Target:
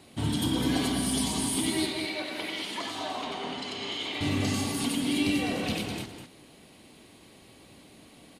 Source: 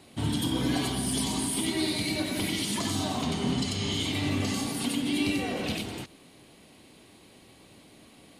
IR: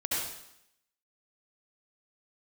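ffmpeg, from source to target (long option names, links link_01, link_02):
-filter_complex "[0:a]asettb=1/sr,asplit=3[link_01][link_02][link_03];[link_01]atrim=end=1.864[link_04];[link_02]atrim=start=1.86:end=4.21,asetpts=PTS-STARTPTS,afade=type=in:duration=0.004:curve=qsin,afade=type=out:start_time=2.346:duration=0.004:curve=qsin,acrossover=split=360 4000:gain=0.0794 1 0.2[link_05][link_06][link_07];[link_05][link_06][link_07]amix=inputs=3:normalize=0[link_08];[link_03]atrim=start=4.206[link_09];[link_04][link_08]acrossfade=duration=0.004:curve1=hsin:curve2=qsin[link_10];[link_10][link_09]acrossfade=duration=0.004:curve1=qsin:curve2=hsin,aecho=1:1:204:0.447"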